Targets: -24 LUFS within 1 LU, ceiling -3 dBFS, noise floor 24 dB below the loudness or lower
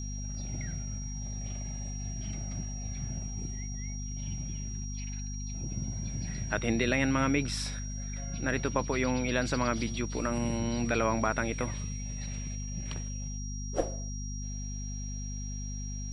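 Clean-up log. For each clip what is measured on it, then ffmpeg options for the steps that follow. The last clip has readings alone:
hum 50 Hz; highest harmonic 250 Hz; hum level -35 dBFS; steady tone 5.7 kHz; tone level -43 dBFS; loudness -33.5 LUFS; peak level -12.5 dBFS; loudness target -24.0 LUFS
-> -af "bandreject=f=50:t=h:w=4,bandreject=f=100:t=h:w=4,bandreject=f=150:t=h:w=4,bandreject=f=200:t=h:w=4,bandreject=f=250:t=h:w=4"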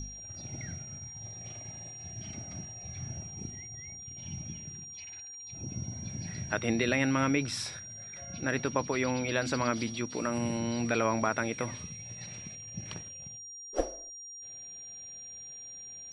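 hum not found; steady tone 5.7 kHz; tone level -43 dBFS
-> -af "bandreject=f=5700:w=30"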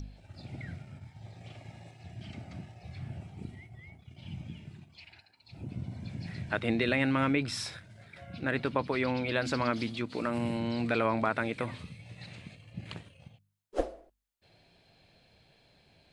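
steady tone not found; loudness -33.0 LUFS; peak level -13.5 dBFS; loudness target -24.0 LUFS
-> -af "volume=2.82"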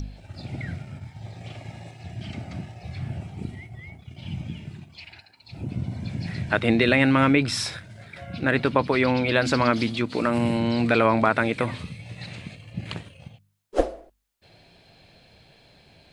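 loudness -24.0 LUFS; peak level -4.5 dBFS; noise floor -58 dBFS

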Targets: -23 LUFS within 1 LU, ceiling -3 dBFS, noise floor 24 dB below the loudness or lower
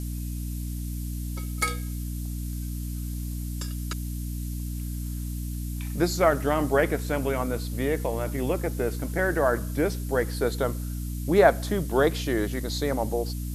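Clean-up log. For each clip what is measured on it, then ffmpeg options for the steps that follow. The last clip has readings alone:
hum 60 Hz; highest harmonic 300 Hz; hum level -29 dBFS; noise floor -32 dBFS; noise floor target -52 dBFS; loudness -27.5 LUFS; peak level -4.5 dBFS; loudness target -23.0 LUFS
-> -af "bandreject=f=60:t=h:w=6,bandreject=f=120:t=h:w=6,bandreject=f=180:t=h:w=6,bandreject=f=240:t=h:w=6,bandreject=f=300:t=h:w=6"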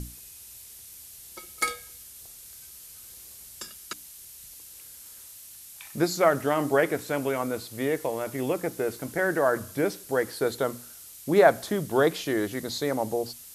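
hum not found; noise floor -47 dBFS; noise floor target -51 dBFS
-> -af "afftdn=nr=6:nf=-47"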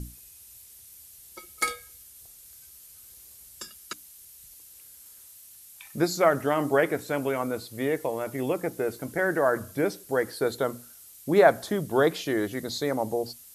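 noise floor -50 dBFS; noise floor target -51 dBFS
-> -af "afftdn=nr=6:nf=-50"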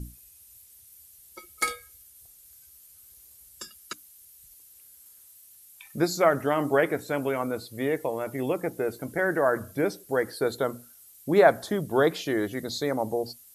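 noise floor -54 dBFS; loudness -26.5 LUFS; peak level -5.5 dBFS; loudness target -23.0 LUFS
-> -af "volume=1.5,alimiter=limit=0.708:level=0:latency=1"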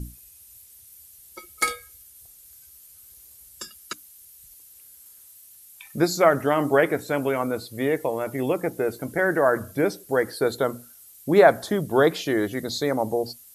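loudness -23.0 LUFS; peak level -3.0 dBFS; noise floor -50 dBFS

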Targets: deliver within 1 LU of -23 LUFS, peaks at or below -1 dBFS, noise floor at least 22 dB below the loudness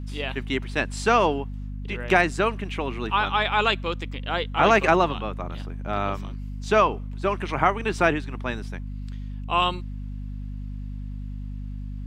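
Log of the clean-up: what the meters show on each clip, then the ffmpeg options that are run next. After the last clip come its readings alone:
hum 50 Hz; highest harmonic 250 Hz; hum level -30 dBFS; loudness -24.0 LUFS; peak level -3.5 dBFS; loudness target -23.0 LUFS
-> -af "bandreject=f=50:t=h:w=6,bandreject=f=100:t=h:w=6,bandreject=f=150:t=h:w=6,bandreject=f=200:t=h:w=6,bandreject=f=250:t=h:w=6"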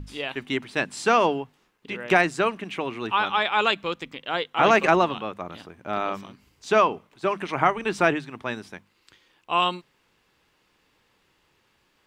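hum not found; loudness -24.0 LUFS; peak level -3.5 dBFS; loudness target -23.0 LUFS
-> -af "volume=1.12"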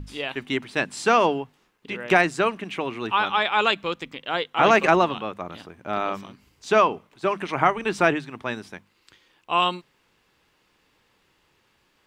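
loudness -23.0 LUFS; peak level -2.5 dBFS; noise floor -66 dBFS

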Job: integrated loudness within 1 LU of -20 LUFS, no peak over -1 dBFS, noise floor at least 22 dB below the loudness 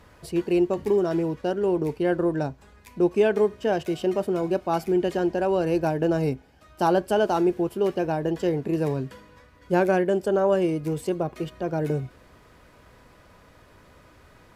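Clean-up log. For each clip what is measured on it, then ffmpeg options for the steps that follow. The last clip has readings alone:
loudness -24.5 LUFS; peak level -9.0 dBFS; loudness target -20.0 LUFS
-> -af "volume=1.68"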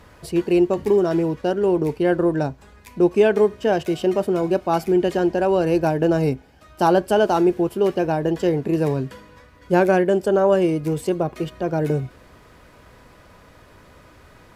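loudness -20.0 LUFS; peak level -4.5 dBFS; noise floor -50 dBFS

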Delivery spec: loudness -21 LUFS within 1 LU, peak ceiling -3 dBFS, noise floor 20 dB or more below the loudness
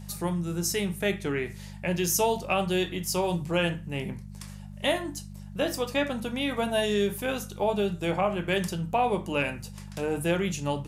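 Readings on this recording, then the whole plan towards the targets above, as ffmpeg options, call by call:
hum 50 Hz; highest harmonic 200 Hz; hum level -40 dBFS; loudness -28.5 LUFS; peak level -12.5 dBFS; loudness target -21.0 LUFS
-> -af "bandreject=f=50:t=h:w=4,bandreject=f=100:t=h:w=4,bandreject=f=150:t=h:w=4,bandreject=f=200:t=h:w=4"
-af "volume=2.37"

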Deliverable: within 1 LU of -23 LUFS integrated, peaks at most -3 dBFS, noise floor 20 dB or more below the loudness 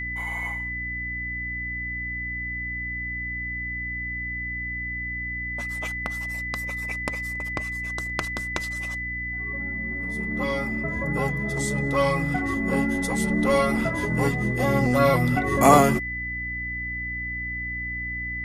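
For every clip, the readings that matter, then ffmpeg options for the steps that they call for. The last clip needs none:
hum 60 Hz; highest harmonic 300 Hz; hum level -34 dBFS; steady tone 2 kHz; tone level -29 dBFS; loudness -25.5 LUFS; peak level -1.5 dBFS; loudness target -23.0 LUFS
-> -af "bandreject=f=60:t=h:w=4,bandreject=f=120:t=h:w=4,bandreject=f=180:t=h:w=4,bandreject=f=240:t=h:w=4,bandreject=f=300:t=h:w=4"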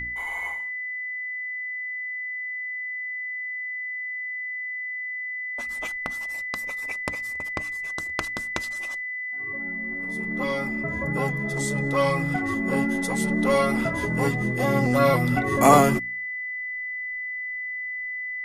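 hum not found; steady tone 2 kHz; tone level -29 dBFS
-> -af "bandreject=f=2000:w=30"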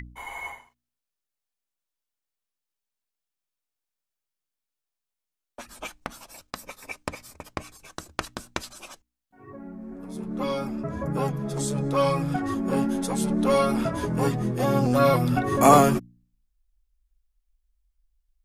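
steady tone not found; loudness -24.0 LUFS; peak level -2.5 dBFS; loudness target -23.0 LUFS
-> -af "volume=1.12,alimiter=limit=0.708:level=0:latency=1"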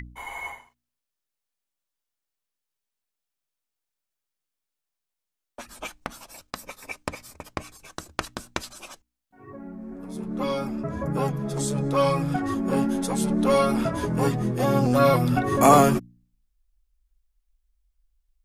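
loudness -23.5 LUFS; peak level -3.0 dBFS; noise floor -85 dBFS

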